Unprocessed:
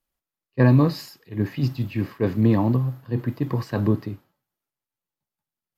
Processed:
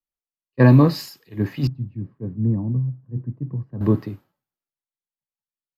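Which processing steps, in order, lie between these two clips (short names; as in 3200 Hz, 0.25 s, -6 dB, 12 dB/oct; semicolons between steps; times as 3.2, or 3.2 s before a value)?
1.67–3.81 band-pass 140 Hz, Q 1.5; three-band expander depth 40%; gain +1 dB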